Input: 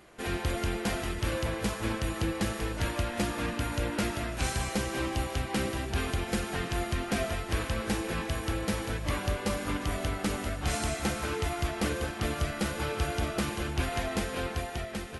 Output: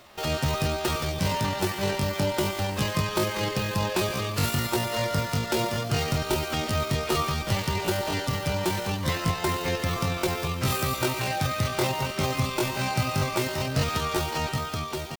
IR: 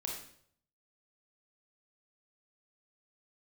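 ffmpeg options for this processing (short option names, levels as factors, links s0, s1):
-filter_complex "[0:a]asplit=2[s0][s1];[1:a]atrim=start_sample=2205,lowpass=8900,adelay=100[s2];[s1][s2]afir=irnorm=-1:irlink=0,volume=0.126[s3];[s0][s3]amix=inputs=2:normalize=0,asetrate=78577,aresample=44100,atempo=0.561231,volume=1.68"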